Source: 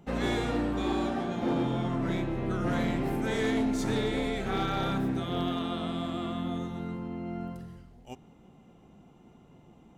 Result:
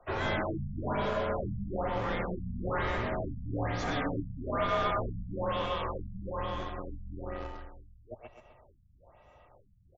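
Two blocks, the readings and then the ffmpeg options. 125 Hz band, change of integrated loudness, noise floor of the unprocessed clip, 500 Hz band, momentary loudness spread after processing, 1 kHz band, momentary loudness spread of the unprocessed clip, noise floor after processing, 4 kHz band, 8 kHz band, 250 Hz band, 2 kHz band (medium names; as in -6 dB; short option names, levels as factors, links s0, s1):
-3.0 dB, -3.0 dB, -57 dBFS, -1.0 dB, 13 LU, +1.0 dB, 10 LU, -62 dBFS, -4.5 dB, -10.5 dB, -9.0 dB, 0.0 dB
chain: -filter_complex "[0:a]afreqshift=-150,acrossover=split=130|420|3000[s0][s1][s2][s3];[s1]acrusher=bits=4:dc=4:mix=0:aa=0.000001[s4];[s0][s4][s2][s3]amix=inputs=4:normalize=0,asplit=2[s5][s6];[s6]highpass=f=720:p=1,volume=7.94,asoftclip=type=tanh:threshold=0.141[s7];[s5][s7]amix=inputs=2:normalize=0,lowpass=f=1300:p=1,volume=0.501,aecho=1:1:129|258|387|516|645:0.473|0.218|0.1|0.0461|0.0212,afftfilt=real='re*lt(b*sr/1024,220*pow(7700/220,0.5+0.5*sin(2*PI*1.1*pts/sr)))':imag='im*lt(b*sr/1024,220*pow(7700/220,0.5+0.5*sin(2*PI*1.1*pts/sr)))':win_size=1024:overlap=0.75,volume=0.75"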